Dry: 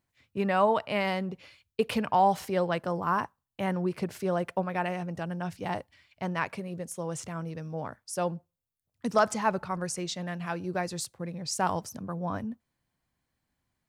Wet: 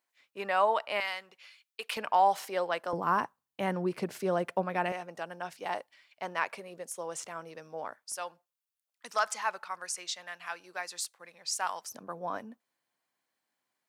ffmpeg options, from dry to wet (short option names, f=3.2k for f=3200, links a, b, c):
-af "asetnsamples=n=441:p=0,asendcmd='1 highpass f 1300;1.97 highpass f 550;2.93 highpass f 210;4.92 highpass f 500;8.12 highpass f 1100;11.92 highpass f 430',highpass=600"